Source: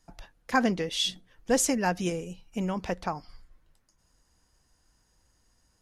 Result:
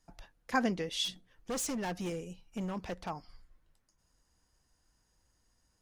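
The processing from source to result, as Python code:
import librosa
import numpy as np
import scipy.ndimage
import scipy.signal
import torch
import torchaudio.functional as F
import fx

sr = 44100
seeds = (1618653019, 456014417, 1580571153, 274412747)

y = fx.clip_hard(x, sr, threshold_db=-27.0, at=(1.04, 3.09), fade=0.02)
y = F.gain(torch.from_numpy(y), -5.5).numpy()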